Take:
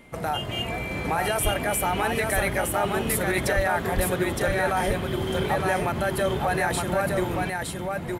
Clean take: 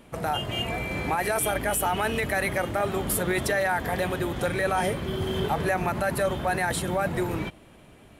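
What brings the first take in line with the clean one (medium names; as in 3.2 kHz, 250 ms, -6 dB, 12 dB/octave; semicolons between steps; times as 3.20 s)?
band-stop 2.1 kHz, Q 30; de-plosive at 1.43/3.55/3.95 s; inverse comb 914 ms -3.5 dB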